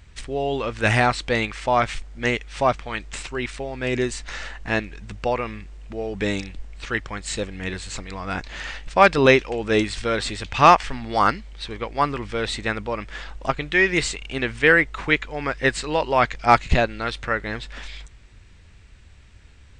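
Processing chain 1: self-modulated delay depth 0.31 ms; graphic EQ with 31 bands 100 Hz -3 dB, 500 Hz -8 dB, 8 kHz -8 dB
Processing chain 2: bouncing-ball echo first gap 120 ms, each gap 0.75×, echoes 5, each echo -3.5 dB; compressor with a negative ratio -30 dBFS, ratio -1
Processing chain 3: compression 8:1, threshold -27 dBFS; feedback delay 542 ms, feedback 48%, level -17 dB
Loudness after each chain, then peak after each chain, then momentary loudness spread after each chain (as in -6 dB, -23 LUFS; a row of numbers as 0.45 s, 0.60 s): -24.0 LUFS, -28.0 LUFS, -32.5 LUFS; -1.0 dBFS, -10.0 dBFS, -14.0 dBFS; 15 LU, 11 LU, 8 LU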